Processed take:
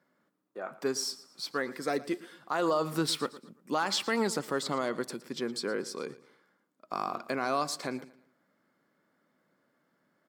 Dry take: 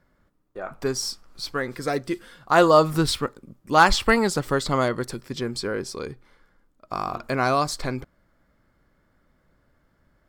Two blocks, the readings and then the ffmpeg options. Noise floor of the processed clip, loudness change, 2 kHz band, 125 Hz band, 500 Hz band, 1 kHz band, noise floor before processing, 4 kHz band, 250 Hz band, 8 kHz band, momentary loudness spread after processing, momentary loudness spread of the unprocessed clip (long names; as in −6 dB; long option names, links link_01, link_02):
−75 dBFS, −9.5 dB, −11.0 dB, −14.0 dB, −9.5 dB, −11.0 dB, −66 dBFS, −6.0 dB, −8.0 dB, −5.5 dB, 11 LU, 16 LU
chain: -filter_complex "[0:a]highpass=frequency=180:width=0.5412,highpass=frequency=180:width=1.3066,alimiter=limit=-13.5dB:level=0:latency=1:release=88,asplit=2[link_01][link_02];[link_02]aecho=0:1:114|228|342:0.126|0.0441|0.0154[link_03];[link_01][link_03]amix=inputs=2:normalize=0,volume=-5dB"